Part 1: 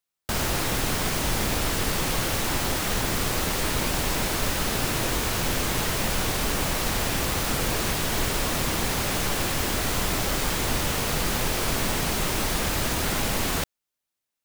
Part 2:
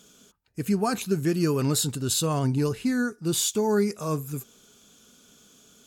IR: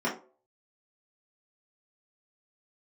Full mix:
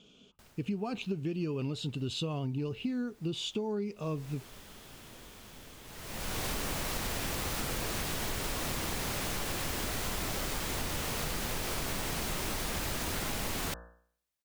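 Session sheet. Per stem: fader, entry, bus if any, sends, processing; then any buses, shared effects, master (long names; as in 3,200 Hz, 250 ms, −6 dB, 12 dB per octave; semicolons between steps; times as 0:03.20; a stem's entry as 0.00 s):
0:03.98 −15 dB → 0:04.19 −3.5 dB, 0.10 s, no send, hum removal 58.9 Hz, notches 30; automatic ducking −22 dB, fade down 0.55 s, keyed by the second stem
−1.5 dB, 0.00 s, no send, low-pass with resonance 2,800 Hz, resonance Q 3.7; parametric band 1,700 Hz −14.5 dB 1.2 octaves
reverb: not used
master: downward compressor, threshold −31 dBFS, peak gain reduction 10.5 dB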